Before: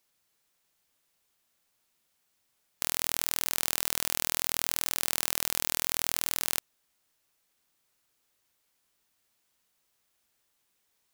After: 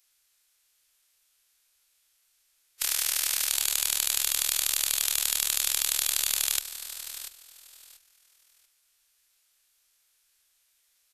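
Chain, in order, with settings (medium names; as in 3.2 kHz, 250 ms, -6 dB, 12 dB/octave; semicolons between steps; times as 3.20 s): amplifier tone stack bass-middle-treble 10-0-10; feedback delay 688 ms, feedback 22%, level -11.5 dB; formant-preserving pitch shift -8.5 st; trim +7.5 dB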